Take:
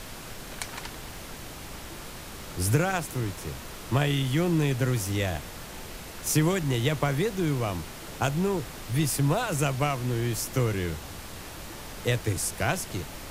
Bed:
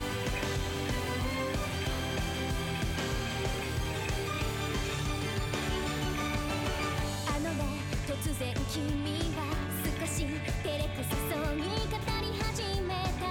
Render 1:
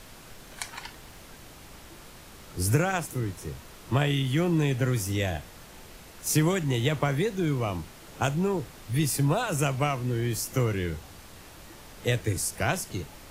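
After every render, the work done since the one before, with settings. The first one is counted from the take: noise print and reduce 7 dB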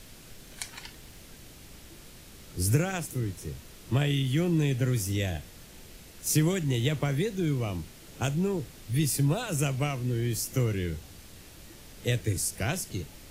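peaking EQ 1 kHz -9 dB 1.7 oct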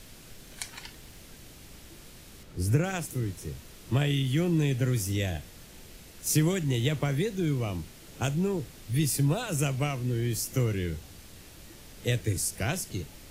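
2.43–2.84 s: treble shelf 3.4 kHz -9.5 dB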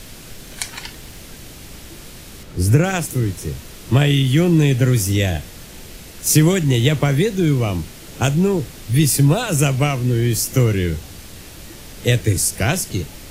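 trim +11.5 dB; peak limiter -2 dBFS, peak gain reduction 1 dB

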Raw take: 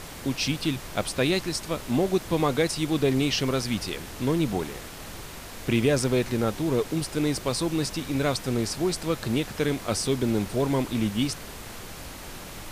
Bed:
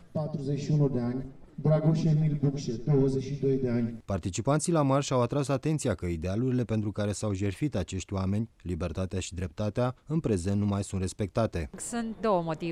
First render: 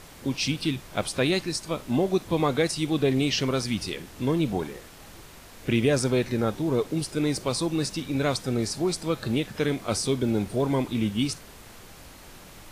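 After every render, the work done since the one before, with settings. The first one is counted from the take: noise print and reduce 7 dB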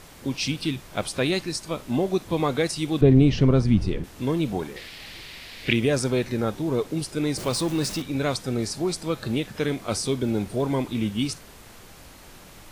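3.01–4.04 s: tilt EQ -4 dB/octave; 4.76–5.73 s: high-order bell 3 kHz +12.5 dB; 7.38–8.02 s: jump at every zero crossing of -32 dBFS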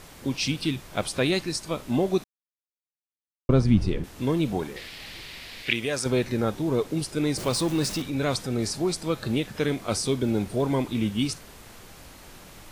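2.24–3.49 s: mute; 5.62–6.06 s: bass shelf 500 Hz -12 dB; 7.97–8.77 s: transient shaper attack -4 dB, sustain +2 dB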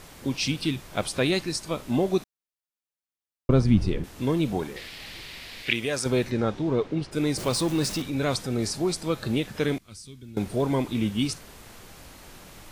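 6.30–7.11 s: low-pass 7 kHz -> 2.7 kHz; 9.78–10.37 s: amplifier tone stack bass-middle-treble 6-0-2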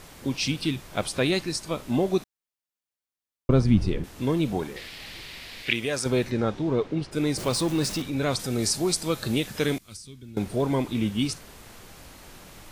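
8.39–9.97 s: treble shelf 4.1 kHz +9 dB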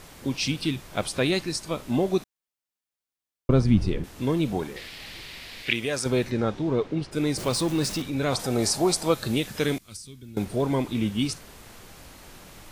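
8.32–9.14 s: peaking EQ 750 Hz +9.5 dB 1.4 oct; 9.94–10.45 s: treble shelf 11 kHz +7.5 dB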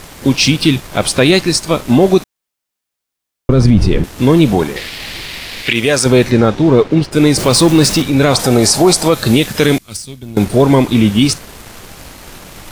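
waveshaping leveller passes 1; loudness maximiser +12.5 dB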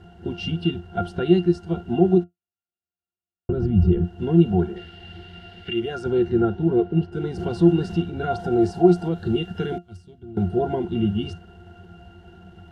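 pitch-class resonator F, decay 0.13 s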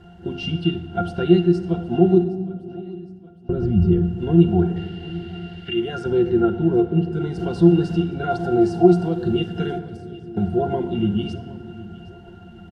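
feedback delay 765 ms, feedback 47%, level -19.5 dB; simulated room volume 3100 m³, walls mixed, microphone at 0.85 m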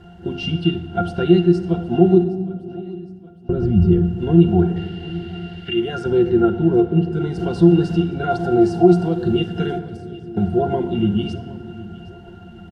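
trim +2.5 dB; peak limiter -2 dBFS, peak gain reduction 2.5 dB

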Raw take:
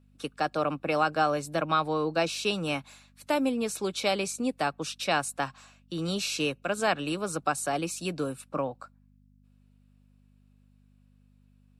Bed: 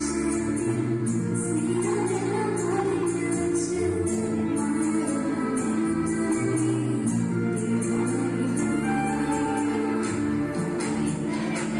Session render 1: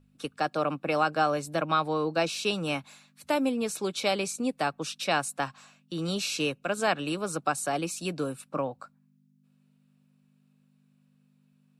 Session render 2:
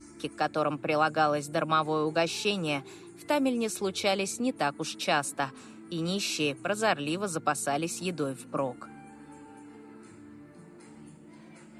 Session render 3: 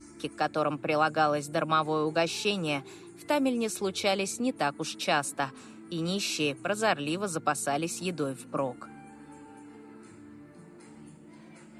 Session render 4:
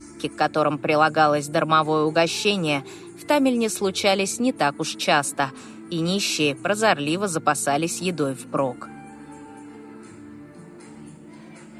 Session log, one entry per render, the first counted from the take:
de-hum 50 Hz, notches 2
add bed -23.5 dB
no audible change
trim +7.5 dB

